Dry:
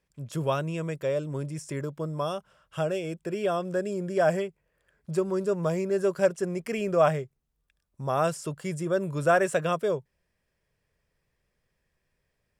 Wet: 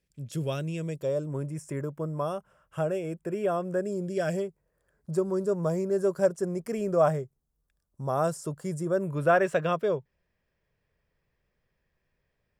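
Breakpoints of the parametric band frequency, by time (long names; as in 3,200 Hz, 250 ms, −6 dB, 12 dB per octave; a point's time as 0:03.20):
parametric band −13 dB 1.3 octaves
0:00.80 1,000 Hz
0:01.34 4,000 Hz
0:03.79 4,000 Hz
0:04.27 790 Hz
0:04.44 2,700 Hz
0:08.88 2,700 Hz
0:09.39 9,500 Hz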